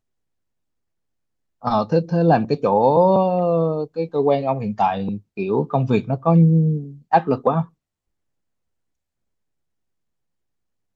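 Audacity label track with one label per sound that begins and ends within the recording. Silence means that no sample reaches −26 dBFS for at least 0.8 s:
1.650000	7.630000	sound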